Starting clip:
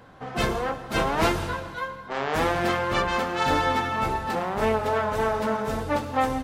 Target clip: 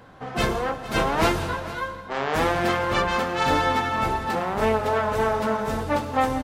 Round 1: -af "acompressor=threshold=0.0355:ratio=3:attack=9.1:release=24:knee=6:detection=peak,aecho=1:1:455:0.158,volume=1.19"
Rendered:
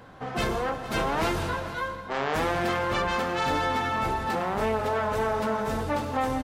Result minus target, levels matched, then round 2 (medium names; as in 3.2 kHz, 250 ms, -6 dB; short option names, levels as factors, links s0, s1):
compression: peak gain reduction +7 dB
-af "aecho=1:1:455:0.158,volume=1.19"